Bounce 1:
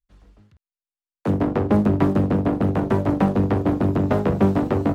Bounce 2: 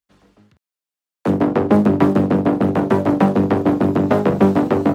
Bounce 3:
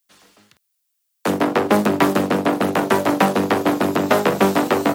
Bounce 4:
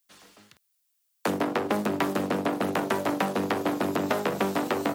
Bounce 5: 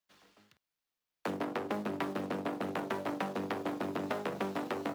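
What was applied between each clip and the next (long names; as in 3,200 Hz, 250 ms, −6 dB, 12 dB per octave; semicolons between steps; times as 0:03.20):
high-pass filter 160 Hz 12 dB per octave; level +5.5 dB
spectral tilt +4 dB per octave; level +3.5 dB
downward compressor 4 to 1, threshold −23 dBFS, peak gain reduction 11 dB; level −1.5 dB
running median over 5 samples; level −9 dB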